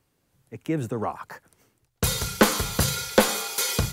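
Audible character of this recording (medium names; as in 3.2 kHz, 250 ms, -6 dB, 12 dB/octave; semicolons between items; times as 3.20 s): noise floor -72 dBFS; spectral tilt -3.5 dB/octave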